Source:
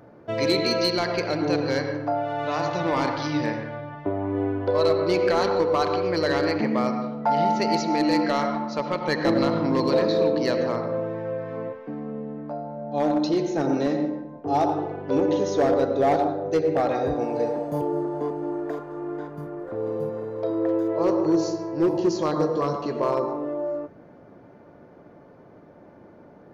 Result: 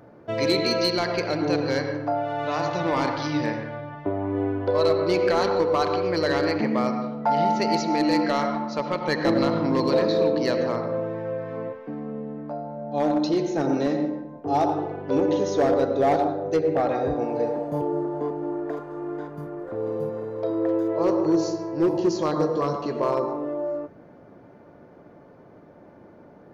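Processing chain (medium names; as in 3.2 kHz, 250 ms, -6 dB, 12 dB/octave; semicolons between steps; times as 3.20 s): 16.56–18.77 s: treble shelf 4.6 kHz -8.5 dB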